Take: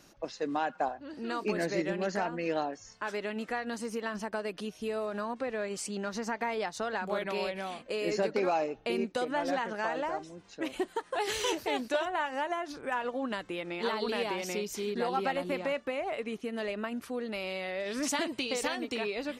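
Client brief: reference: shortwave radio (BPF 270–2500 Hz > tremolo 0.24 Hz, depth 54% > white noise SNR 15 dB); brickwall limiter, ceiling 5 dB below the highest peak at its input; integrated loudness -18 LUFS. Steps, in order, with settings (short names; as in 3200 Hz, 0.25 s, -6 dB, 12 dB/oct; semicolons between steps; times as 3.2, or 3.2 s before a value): limiter -23.5 dBFS; BPF 270–2500 Hz; tremolo 0.24 Hz, depth 54%; white noise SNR 15 dB; gain +20.5 dB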